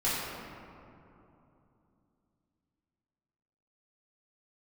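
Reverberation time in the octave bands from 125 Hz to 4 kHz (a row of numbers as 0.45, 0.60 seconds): 3.8, 3.8, 3.0, 2.8, 2.0, 1.2 seconds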